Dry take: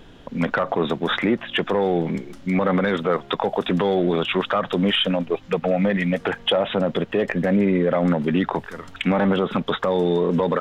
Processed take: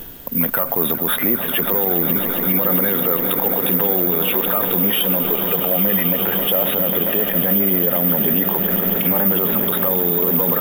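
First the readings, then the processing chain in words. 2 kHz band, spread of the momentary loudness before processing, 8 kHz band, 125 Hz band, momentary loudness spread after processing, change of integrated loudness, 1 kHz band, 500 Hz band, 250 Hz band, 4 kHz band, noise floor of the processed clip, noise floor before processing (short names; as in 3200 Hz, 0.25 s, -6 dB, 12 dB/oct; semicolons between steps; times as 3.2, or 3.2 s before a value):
-0.5 dB, 5 LU, n/a, -1.0 dB, 2 LU, +6.5 dB, -1.0 dB, -1.5 dB, -1.0 dB, -1.0 dB, -24 dBFS, -45 dBFS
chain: reverse; upward compressor, threshold -32 dBFS; reverse; swelling echo 0.135 s, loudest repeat 8, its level -16 dB; careless resampling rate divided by 3×, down none, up zero stuff; added noise white -53 dBFS; maximiser +6.5 dB; gain -4 dB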